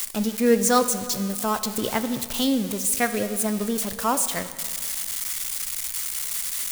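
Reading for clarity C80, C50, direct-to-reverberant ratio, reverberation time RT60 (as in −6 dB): 12.5 dB, 11.5 dB, 10.0 dB, 2.0 s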